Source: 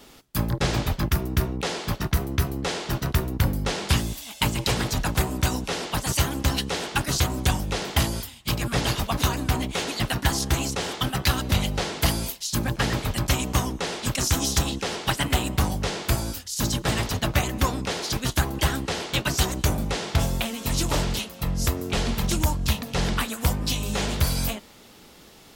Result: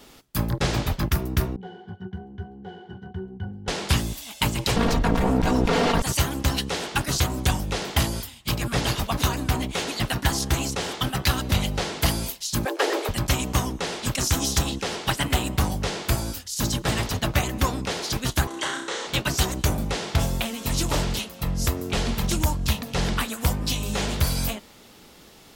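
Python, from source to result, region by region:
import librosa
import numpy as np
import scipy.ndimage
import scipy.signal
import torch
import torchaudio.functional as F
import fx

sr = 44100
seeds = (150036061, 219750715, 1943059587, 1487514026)

y = fx.chain(x, sr, fx.highpass(hz=120.0, slope=12),
    fx.high_shelf(hz=4000.0, db=-7.5),
    fx.octave_resonator(note='F#', decay_s=0.11), at=(1.56, 3.68))
y = fx.chain(y, sr, fx.lower_of_two(delay_ms=4.3),
    fx.lowpass(hz=1300.0, slope=6),
    fx.env_flatten(amount_pct=100), at=(4.76, 6.02))
y = fx.chain(y, sr, fx.steep_highpass(hz=330.0, slope=48),
    fx.peak_eq(hz=420.0, db=9.0, octaves=1.8), at=(12.65, 13.09))
y = fx.chain(y, sr, fx.cabinet(low_hz=470.0, low_slope=12, high_hz=8300.0, hz=(720.0, 2500.0, 4900.0), db=(-10, -7, -9)),
    fx.room_flutter(wall_m=5.6, rt60_s=0.49),
    fx.band_squash(depth_pct=40), at=(18.47, 19.07))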